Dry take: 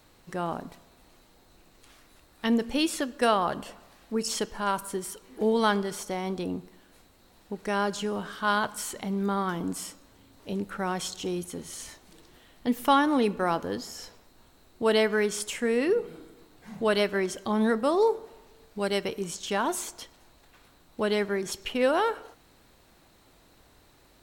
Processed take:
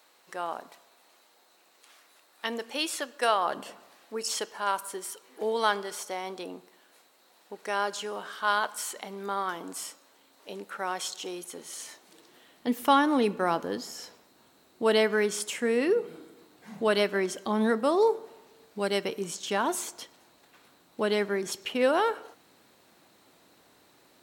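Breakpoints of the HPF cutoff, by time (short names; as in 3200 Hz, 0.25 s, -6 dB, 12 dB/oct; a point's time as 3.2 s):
3.37 s 560 Hz
3.69 s 210 Hz
4.17 s 480 Hz
11.39 s 480 Hz
12.92 s 180 Hz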